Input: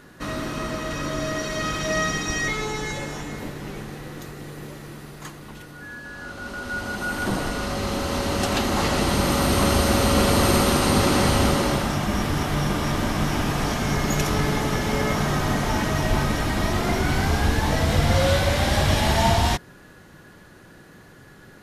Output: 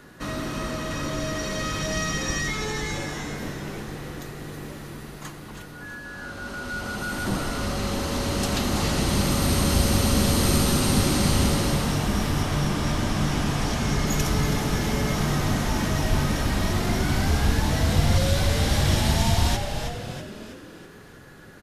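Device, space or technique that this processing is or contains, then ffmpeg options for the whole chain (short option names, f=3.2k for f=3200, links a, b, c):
one-band saturation: -filter_complex "[0:a]asettb=1/sr,asplit=3[a][b][c];[a]atrim=end=12.424[d];[b]atrim=start=12.42:end=14.07,asetpts=PTS-STARTPTS,afade=t=in:d=0.004:c=qsin,afade=t=out:st=1.646:d=0.004:c=qsin,lowpass=11k[e];[c]atrim=start=14.066[f];[d][e]acrossfade=d=0.004:c1=hsin:c2=qsin[g];[g][f]acrossfade=d=0.004:c1=qsin:c2=hsin,asplit=7[h][i][j][k][l][m][n];[i]adelay=324,afreqshift=-99,volume=-9dB[o];[j]adelay=648,afreqshift=-198,volume=-15.2dB[p];[k]adelay=972,afreqshift=-297,volume=-21.4dB[q];[l]adelay=1296,afreqshift=-396,volume=-27.6dB[r];[m]adelay=1620,afreqshift=-495,volume=-33.8dB[s];[n]adelay=1944,afreqshift=-594,volume=-40dB[t];[h][o][p][q][r][s][t]amix=inputs=7:normalize=0,acrossover=split=280|3500[u][v][w];[v]asoftclip=type=tanh:threshold=-28dB[x];[u][x][w]amix=inputs=3:normalize=0"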